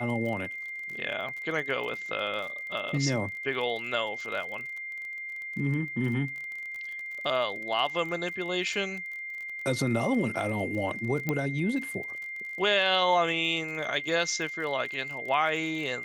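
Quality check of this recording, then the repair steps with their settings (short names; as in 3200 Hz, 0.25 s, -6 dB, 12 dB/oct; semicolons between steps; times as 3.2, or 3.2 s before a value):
crackle 33/s -36 dBFS
tone 2100 Hz -35 dBFS
11.29 pop -15 dBFS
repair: de-click; notch 2100 Hz, Q 30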